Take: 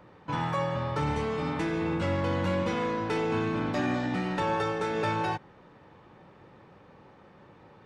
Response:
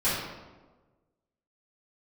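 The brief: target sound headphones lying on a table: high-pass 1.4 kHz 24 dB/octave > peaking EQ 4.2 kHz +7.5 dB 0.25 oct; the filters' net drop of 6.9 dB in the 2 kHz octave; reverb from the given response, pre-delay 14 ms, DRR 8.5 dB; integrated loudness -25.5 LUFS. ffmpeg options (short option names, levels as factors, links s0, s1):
-filter_complex "[0:a]equalizer=f=2000:t=o:g=-8,asplit=2[s0][s1];[1:a]atrim=start_sample=2205,adelay=14[s2];[s1][s2]afir=irnorm=-1:irlink=0,volume=0.0891[s3];[s0][s3]amix=inputs=2:normalize=0,highpass=f=1400:w=0.5412,highpass=f=1400:w=1.3066,equalizer=f=4200:t=o:w=0.25:g=7.5,volume=6.31"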